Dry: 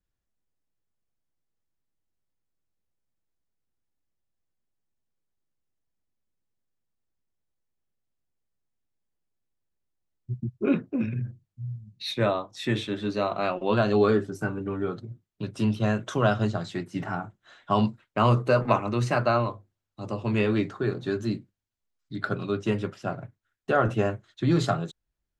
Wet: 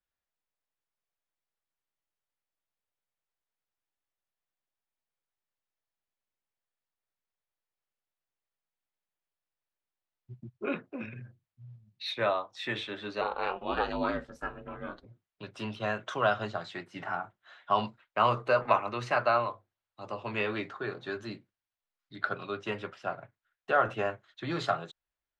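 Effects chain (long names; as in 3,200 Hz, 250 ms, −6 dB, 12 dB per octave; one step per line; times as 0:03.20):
three-way crossover with the lows and the highs turned down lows −15 dB, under 530 Hz, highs −14 dB, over 4,300 Hz
0:13.21–0:15.06: ring modulation 160 Hz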